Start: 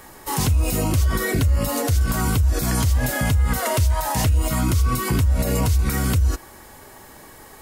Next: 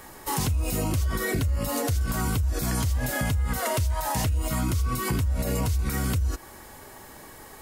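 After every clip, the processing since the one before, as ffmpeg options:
ffmpeg -i in.wav -af "acompressor=threshold=-23dB:ratio=2.5,volume=-1.5dB" out.wav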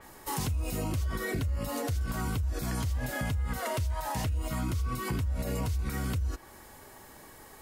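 ffmpeg -i in.wav -af "adynamicequalizer=threshold=0.00355:dfrequency=5100:dqfactor=0.7:tfrequency=5100:tqfactor=0.7:attack=5:release=100:ratio=0.375:range=2.5:mode=cutabove:tftype=highshelf,volume=-5.5dB" out.wav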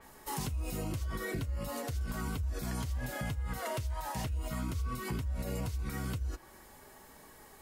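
ffmpeg -i in.wav -af "flanger=delay=4.4:depth=1.9:regen=-61:speed=0.42:shape=triangular" out.wav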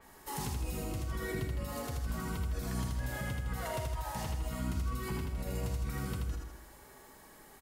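ffmpeg -i in.wav -af "aecho=1:1:80|160|240|320|400|480|560:0.668|0.348|0.181|0.094|0.0489|0.0254|0.0132,volume=-2.5dB" out.wav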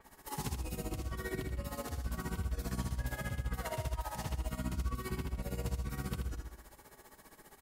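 ffmpeg -i in.wav -af "tremolo=f=15:d=0.77,volume=1.5dB" out.wav

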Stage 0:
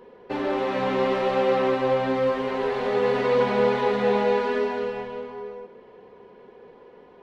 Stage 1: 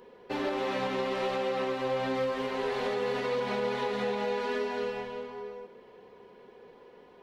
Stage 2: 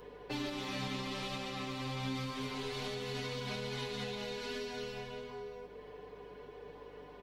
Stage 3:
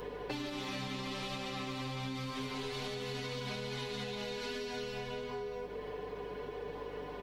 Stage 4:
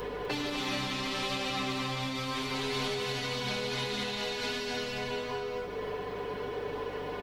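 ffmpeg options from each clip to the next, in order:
ffmpeg -i in.wav -af "highshelf=frequency=3300:gain=10.5,alimiter=limit=-17dB:level=0:latency=1:release=174,volume=-5dB" out.wav
ffmpeg -i in.wav -filter_complex "[0:a]aecho=1:1:6.8:0.77,acrossover=split=200|3000[link_01][link_02][link_03];[link_02]acompressor=threshold=-46dB:ratio=4[link_04];[link_01][link_04][link_03]amix=inputs=3:normalize=0,aeval=exprs='val(0)+0.000708*(sin(2*PI*50*n/s)+sin(2*PI*2*50*n/s)/2+sin(2*PI*3*50*n/s)/3+sin(2*PI*4*50*n/s)/4+sin(2*PI*5*50*n/s)/5)':channel_layout=same,volume=1dB" out.wav
ffmpeg -i in.wav -af "acompressor=threshold=-46dB:ratio=6,volume=9dB" out.wav
ffmpeg -i in.wav -filter_complex "[0:a]acrossover=split=880[link_01][link_02];[link_01]asoftclip=type=tanh:threshold=-39.5dB[link_03];[link_03][link_02]amix=inputs=2:normalize=0,aecho=1:1:250:0.398,volume=7.5dB" out.wav

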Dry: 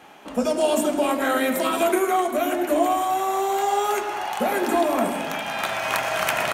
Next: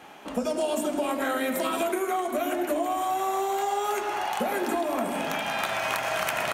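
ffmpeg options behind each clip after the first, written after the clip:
ffmpeg -i in.wav -af "acompressor=threshold=-24dB:ratio=6" out.wav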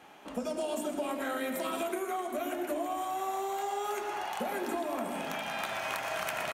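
ffmpeg -i in.wav -af "aecho=1:1:121:0.237,volume=-7dB" out.wav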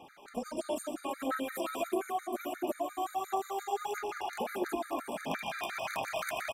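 ffmpeg -i in.wav -af "aphaser=in_gain=1:out_gain=1:delay=2.9:decay=0.46:speed=1.5:type=sinusoidal,afftfilt=real='re*gt(sin(2*PI*5.7*pts/sr)*(1-2*mod(floor(b*sr/1024/1200),2)),0)':imag='im*gt(sin(2*PI*5.7*pts/sr)*(1-2*mod(floor(b*sr/1024/1200),2)),0)':win_size=1024:overlap=0.75" out.wav

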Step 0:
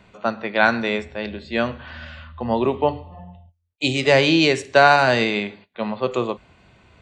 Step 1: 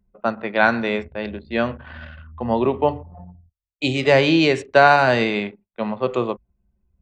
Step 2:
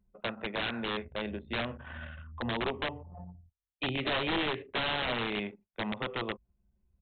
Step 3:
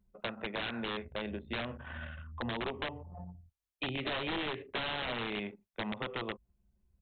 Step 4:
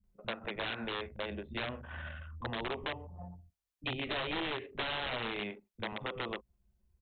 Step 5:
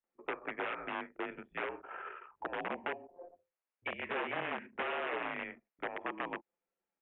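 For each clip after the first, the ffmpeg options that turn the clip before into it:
ffmpeg -i in.wav -af "anlmdn=1.58,highshelf=frequency=4000:gain=-9,volume=1dB" out.wav
ffmpeg -i in.wav -af "acompressor=threshold=-26dB:ratio=2.5,aresample=8000,aeval=exprs='(mod(9.44*val(0)+1,2)-1)/9.44':channel_layout=same,aresample=44100,volume=-5.5dB" out.wav
ffmpeg -i in.wav -af "acompressor=threshold=-34dB:ratio=3" out.wav
ffmpeg -i in.wav -filter_complex "[0:a]acrossover=split=220[link_01][link_02];[link_02]adelay=40[link_03];[link_01][link_03]amix=inputs=2:normalize=0" out.wav
ffmpeg -i in.wav -af "aemphasis=mode=reproduction:type=bsi,highpass=frequency=570:width_type=q:width=0.5412,highpass=frequency=570:width_type=q:width=1.307,lowpass=frequency=2800:width_type=q:width=0.5176,lowpass=frequency=2800:width_type=q:width=0.7071,lowpass=frequency=2800:width_type=q:width=1.932,afreqshift=-180,volume=2.5dB" out.wav

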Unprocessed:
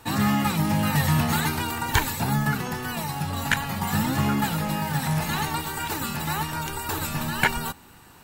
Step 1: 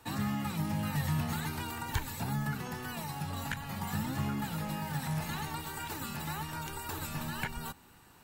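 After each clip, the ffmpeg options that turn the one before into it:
ffmpeg -i in.wav -filter_complex "[0:a]acrossover=split=190[link_01][link_02];[link_02]acompressor=threshold=-28dB:ratio=3[link_03];[link_01][link_03]amix=inputs=2:normalize=0,volume=-8.5dB" out.wav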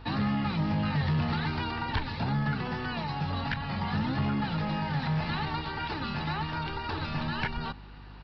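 ffmpeg -i in.wav -af "aeval=exprs='val(0)+0.00224*(sin(2*PI*50*n/s)+sin(2*PI*2*50*n/s)/2+sin(2*PI*3*50*n/s)/3+sin(2*PI*4*50*n/s)/4+sin(2*PI*5*50*n/s)/5)':channel_layout=same,aresample=11025,asoftclip=type=tanh:threshold=-28.5dB,aresample=44100,volume=7dB" out.wav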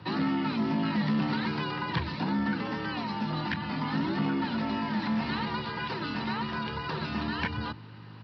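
ffmpeg -i in.wav -af "afreqshift=63" out.wav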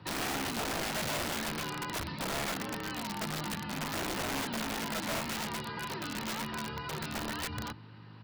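ffmpeg -i in.wav -af "aeval=exprs='(mod(17.8*val(0)+1,2)-1)/17.8':channel_layout=same,volume=-4.5dB" out.wav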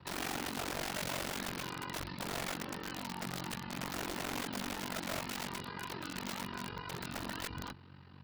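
ffmpeg -i in.wav -af "aeval=exprs='val(0)*sin(2*PI*23*n/s)':channel_layout=same,volume=-1.5dB" out.wav

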